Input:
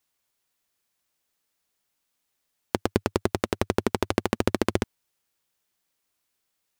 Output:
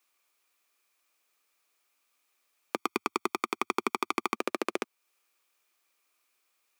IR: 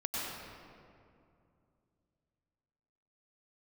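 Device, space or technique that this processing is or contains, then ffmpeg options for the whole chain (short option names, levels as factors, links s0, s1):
laptop speaker: -filter_complex "[0:a]highpass=f=290:w=0.5412,highpass=f=290:w=1.3066,equalizer=f=1200:t=o:w=0.24:g=9,equalizer=f=2400:t=o:w=0.21:g=10,alimiter=limit=0.2:level=0:latency=1:release=309,asettb=1/sr,asplit=3[s0][s1][s2];[s0]atrim=end=2.754[s3];[s1]atrim=start=2.75:end=4.36,asetpts=PTS-STARTPTS,afade=t=in:d=0.004:c=qsin,afade=t=out:st=1.606:d=0.004:c=qsin,aecho=1:1:0.9:0.84,atrim=end_sample=71001[s4];[s2]atrim=start=4.356[s5];[s3][s4]acrossfade=d=0.004:c1=hsin:c2=qsin[s6];[s6][s5]acrossfade=d=0.004:c1=qsin:c2=hsin,volume=1.26"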